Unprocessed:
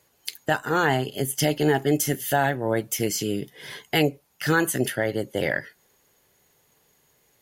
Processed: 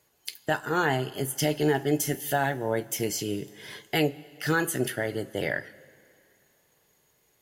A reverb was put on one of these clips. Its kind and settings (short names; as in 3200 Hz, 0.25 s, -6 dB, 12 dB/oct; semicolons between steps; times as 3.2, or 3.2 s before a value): two-slope reverb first 0.21 s, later 2.5 s, from -18 dB, DRR 11 dB; gain -4 dB